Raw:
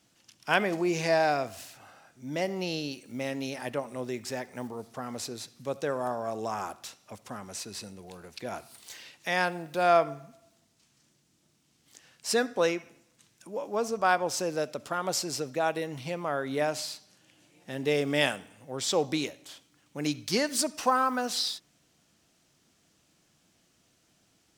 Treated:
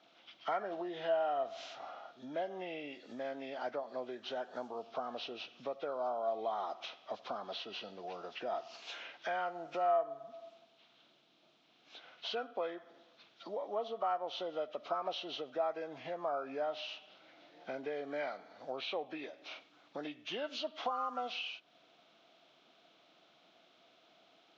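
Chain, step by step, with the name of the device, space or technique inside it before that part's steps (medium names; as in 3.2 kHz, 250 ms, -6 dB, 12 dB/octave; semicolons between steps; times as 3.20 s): hearing aid with frequency lowering (knee-point frequency compression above 1.1 kHz 1.5:1; compression 4:1, threshold -43 dBFS, peak gain reduction 21 dB; cabinet simulation 350–5500 Hz, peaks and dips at 680 Hz +9 dB, 1.3 kHz +4 dB, 1.9 kHz -7 dB, 4.6 kHz -6 dB); trim +3.5 dB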